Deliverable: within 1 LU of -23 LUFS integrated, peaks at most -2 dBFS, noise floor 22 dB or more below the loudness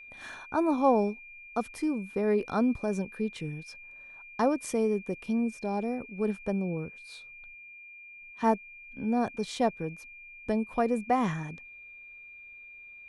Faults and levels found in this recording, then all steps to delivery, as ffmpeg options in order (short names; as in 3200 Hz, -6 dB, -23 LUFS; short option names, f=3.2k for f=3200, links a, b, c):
steady tone 2400 Hz; tone level -46 dBFS; loudness -30.0 LUFS; peak -13.0 dBFS; loudness target -23.0 LUFS
-> -af "bandreject=f=2.4k:w=30"
-af "volume=7dB"